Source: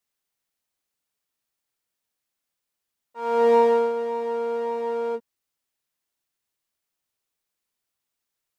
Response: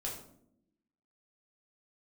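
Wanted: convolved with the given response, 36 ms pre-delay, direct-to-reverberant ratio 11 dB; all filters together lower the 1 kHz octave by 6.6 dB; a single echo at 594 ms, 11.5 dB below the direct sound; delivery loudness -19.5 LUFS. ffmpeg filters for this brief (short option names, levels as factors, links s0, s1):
-filter_complex "[0:a]equalizer=f=1000:t=o:g=-7.5,aecho=1:1:594:0.266,asplit=2[s0][s1];[1:a]atrim=start_sample=2205,adelay=36[s2];[s1][s2]afir=irnorm=-1:irlink=0,volume=0.266[s3];[s0][s3]amix=inputs=2:normalize=0,volume=1.78"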